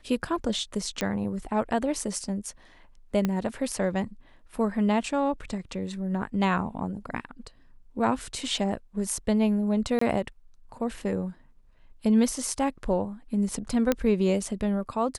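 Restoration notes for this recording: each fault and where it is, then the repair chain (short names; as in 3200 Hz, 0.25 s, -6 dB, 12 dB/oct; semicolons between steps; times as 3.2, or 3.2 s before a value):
1.01 pop -13 dBFS
3.25 pop -13 dBFS
9.99–10.01 gap 24 ms
13.92 pop -9 dBFS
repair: de-click; interpolate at 9.99, 24 ms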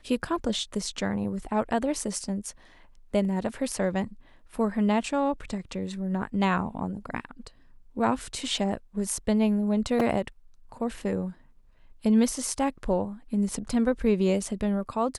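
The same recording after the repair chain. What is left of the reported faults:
3.25 pop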